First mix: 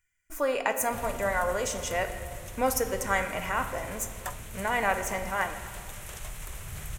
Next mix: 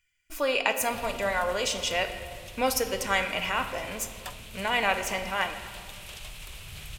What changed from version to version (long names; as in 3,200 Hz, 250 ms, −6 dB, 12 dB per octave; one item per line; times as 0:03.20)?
background −4.5 dB
master: add flat-topped bell 3,500 Hz +11 dB 1.3 octaves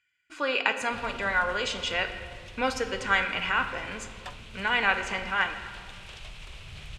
speech: add loudspeaker in its box 140–6,500 Hz, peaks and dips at 630 Hz −9 dB, 1,500 Hz +8 dB, 5,700 Hz −10 dB
background: add high-frequency loss of the air 94 metres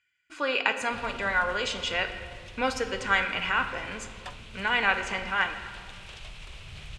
master: add low-pass filter 12,000 Hz 24 dB per octave